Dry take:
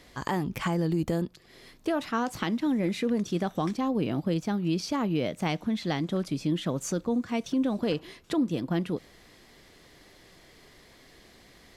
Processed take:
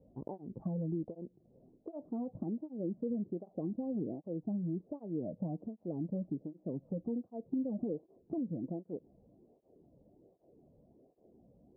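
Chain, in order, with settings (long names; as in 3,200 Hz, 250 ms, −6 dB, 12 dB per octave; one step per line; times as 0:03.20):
adaptive Wiener filter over 15 samples
Butterworth low-pass 670 Hz 36 dB per octave
downward compressor 2 to 1, threshold −33 dBFS, peak gain reduction 6.5 dB
through-zero flanger with one copy inverted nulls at 1.3 Hz, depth 3.1 ms
level −2 dB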